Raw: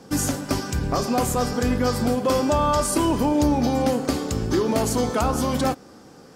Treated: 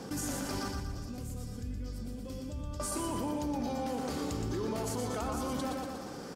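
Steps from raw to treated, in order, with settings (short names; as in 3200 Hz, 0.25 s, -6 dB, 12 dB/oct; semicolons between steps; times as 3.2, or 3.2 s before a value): 0.68–2.8 passive tone stack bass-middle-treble 10-0-1; limiter -21.5 dBFS, peak gain reduction 10.5 dB; feedback echo 0.119 s, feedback 46%, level -5 dB; fast leveller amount 50%; gain -8.5 dB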